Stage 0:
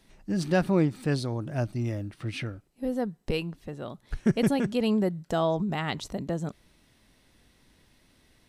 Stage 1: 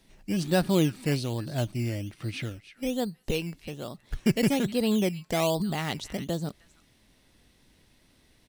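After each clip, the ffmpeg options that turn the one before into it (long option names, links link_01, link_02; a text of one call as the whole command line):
ffmpeg -i in.wav -filter_complex "[0:a]acrossover=split=1300[link_01][link_02];[link_01]acrusher=samples=14:mix=1:aa=0.000001:lfo=1:lforange=8.4:lforate=1.2[link_03];[link_02]aecho=1:1:311:0.211[link_04];[link_03][link_04]amix=inputs=2:normalize=0" out.wav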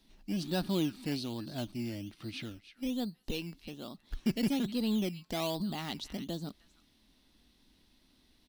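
ffmpeg -i in.wav -filter_complex "[0:a]equalizer=frequency=125:width_type=o:width=1:gain=-10,equalizer=frequency=250:width_type=o:width=1:gain=5,equalizer=frequency=500:width_type=o:width=1:gain=-7,equalizer=frequency=2000:width_type=o:width=1:gain=-6,equalizer=frequency=4000:width_type=o:width=1:gain=5,equalizer=frequency=8000:width_type=o:width=1:gain=-7,asplit=2[link_01][link_02];[link_02]asoftclip=type=tanh:threshold=-29.5dB,volume=-4.5dB[link_03];[link_01][link_03]amix=inputs=2:normalize=0,volume=-7.5dB" out.wav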